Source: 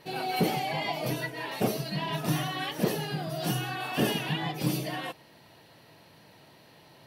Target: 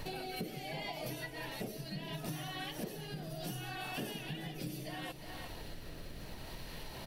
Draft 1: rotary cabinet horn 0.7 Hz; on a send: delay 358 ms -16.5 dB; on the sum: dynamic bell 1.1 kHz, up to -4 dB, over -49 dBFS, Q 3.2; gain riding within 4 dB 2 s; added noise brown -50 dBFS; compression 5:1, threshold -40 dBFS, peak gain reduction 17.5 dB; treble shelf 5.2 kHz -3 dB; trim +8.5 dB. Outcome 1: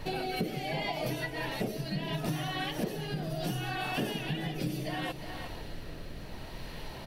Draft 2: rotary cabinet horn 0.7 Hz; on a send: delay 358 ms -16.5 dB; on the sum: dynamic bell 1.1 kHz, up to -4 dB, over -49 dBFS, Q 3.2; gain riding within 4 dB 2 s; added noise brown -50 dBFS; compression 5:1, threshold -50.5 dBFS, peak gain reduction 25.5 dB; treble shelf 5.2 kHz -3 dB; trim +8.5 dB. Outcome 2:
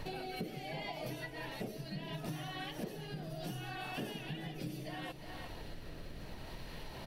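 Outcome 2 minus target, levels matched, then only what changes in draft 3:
8 kHz band -5.0 dB
change: treble shelf 5.2 kHz +5 dB

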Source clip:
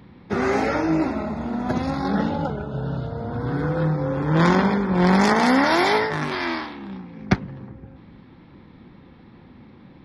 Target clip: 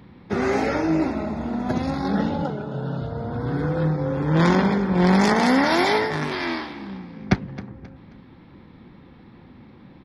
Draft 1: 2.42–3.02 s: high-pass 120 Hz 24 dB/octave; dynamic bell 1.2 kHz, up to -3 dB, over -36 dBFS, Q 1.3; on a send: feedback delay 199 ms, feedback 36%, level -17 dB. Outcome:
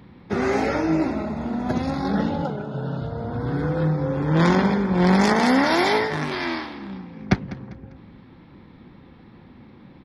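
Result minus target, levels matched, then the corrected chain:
echo 68 ms early
2.42–3.02 s: high-pass 120 Hz 24 dB/octave; dynamic bell 1.2 kHz, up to -3 dB, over -36 dBFS, Q 1.3; on a send: feedback delay 267 ms, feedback 36%, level -17 dB

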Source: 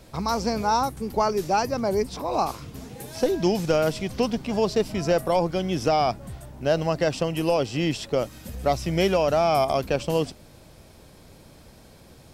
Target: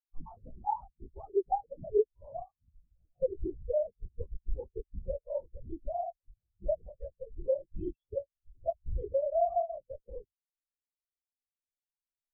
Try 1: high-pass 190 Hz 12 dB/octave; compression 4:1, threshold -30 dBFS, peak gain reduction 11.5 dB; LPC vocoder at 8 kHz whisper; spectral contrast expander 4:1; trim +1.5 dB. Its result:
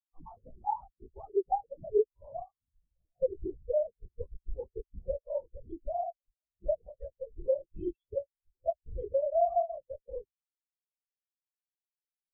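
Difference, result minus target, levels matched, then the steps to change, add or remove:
125 Hz band -5.0 dB
change: high-pass 79 Hz 12 dB/octave

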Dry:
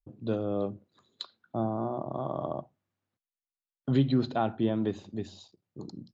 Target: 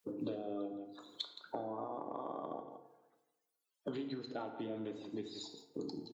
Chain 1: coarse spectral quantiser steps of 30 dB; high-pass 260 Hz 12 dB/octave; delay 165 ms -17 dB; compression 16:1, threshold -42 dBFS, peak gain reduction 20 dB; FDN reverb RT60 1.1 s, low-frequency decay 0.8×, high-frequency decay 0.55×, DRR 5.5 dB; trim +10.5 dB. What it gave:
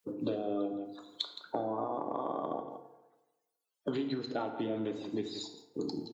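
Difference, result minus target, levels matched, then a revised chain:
compression: peak gain reduction -7 dB
coarse spectral quantiser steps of 30 dB; high-pass 260 Hz 12 dB/octave; delay 165 ms -17 dB; compression 16:1, threshold -49.5 dBFS, peak gain reduction 27 dB; FDN reverb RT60 1.1 s, low-frequency decay 0.8×, high-frequency decay 0.55×, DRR 5.5 dB; trim +10.5 dB

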